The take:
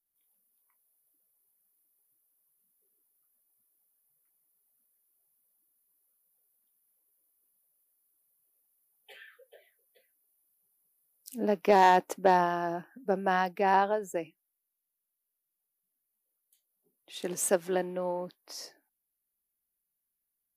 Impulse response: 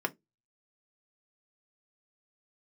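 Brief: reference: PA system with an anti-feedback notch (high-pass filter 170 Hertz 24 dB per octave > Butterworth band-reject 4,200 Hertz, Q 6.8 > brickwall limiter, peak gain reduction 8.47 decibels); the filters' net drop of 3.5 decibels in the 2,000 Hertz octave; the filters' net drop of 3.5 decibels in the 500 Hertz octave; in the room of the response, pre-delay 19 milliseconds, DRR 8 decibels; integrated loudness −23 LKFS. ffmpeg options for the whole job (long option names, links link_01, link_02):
-filter_complex "[0:a]equalizer=frequency=500:width_type=o:gain=-4.5,equalizer=frequency=2000:width_type=o:gain=-4,asplit=2[link_01][link_02];[1:a]atrim=start_sample=2205,adelay=19[link_03];[link_02][link_03]afir=irnorm=-1:irlink=0,volume=-14.5dB[link_04];[link_01][link_04]amix=inputs=2:normalize=0,highpass=frequency=170:width=0.5412,highpass=frequency=170:width=1.3066,asuperstop=centerf=4200:order=8:qfactor=6.8,volume=10dB,alimiter=limit=-9.5dB:level=0:latency=1"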